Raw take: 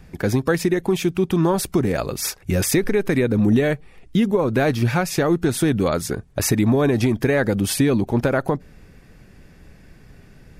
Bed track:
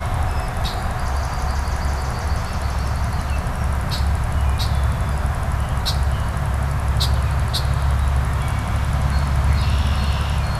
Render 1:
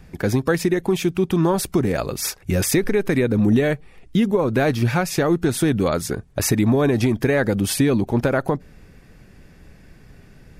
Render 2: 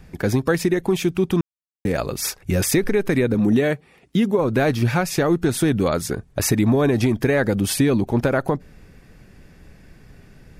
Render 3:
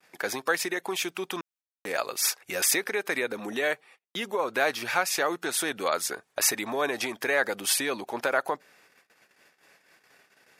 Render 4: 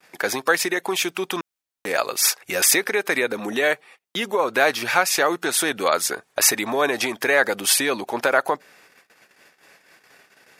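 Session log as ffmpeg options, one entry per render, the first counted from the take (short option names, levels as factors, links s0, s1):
-af anull
-filter_complex "[0:a]asettb=1/sr,asplit=3[s0][s1][s2];[s0]atrim=end=3.344[s3];[s1]atrim=start=3.34:end=4.39,asetpts=PTS-STARTPTS,afade=t=in:d=0.004:c=qsin,afade=t=out:st=1.046:d=0.004:c=qsin,highpass=130[s4];[s2]atrim=start=4.386[s5];[s3][s4]acrossfade=d=0.004:c1=hsin:c2=qsin[s6];[s6][s5]acrossfade=d=0.004:c1=qsin:c2=hsin,asplit=3[s7][s8][s9];[s7]atrim=end=1.41,asetpts=PTS-STARTPTS,afade=t=out:st=1.406:d=0.004:c=hsin[s10];[s8]atrim=start=1.41:end=1.85,asetpts=PTS-STARTPTS,volume=0[s11];[s9]atrim=start=1.85,asetpts=PTS-STARTPTS,afade=t=in:d=0.004:c=hsin[s12];[s10][s11][s12]concat=n=3:v=0:a=1"
-af "agate=range=0.0158:threshold=0.00562:ratio=16:detection=peak,highpass=770"
-af "volume=2.24"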